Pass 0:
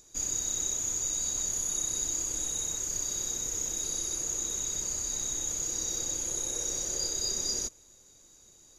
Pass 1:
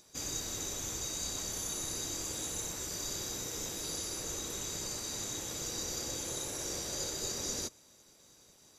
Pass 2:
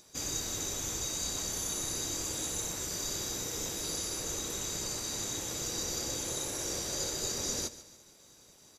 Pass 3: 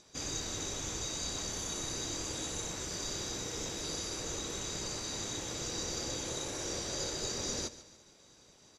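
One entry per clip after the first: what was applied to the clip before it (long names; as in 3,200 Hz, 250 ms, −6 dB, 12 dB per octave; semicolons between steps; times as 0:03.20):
gate on every frequency bin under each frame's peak −10 dB weak; level +2.5 dB
repeating echo 144 ms, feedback 43%, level −16 dB; level +2.5 dB
low-pass filter 6,000 Hz 12 dB per octave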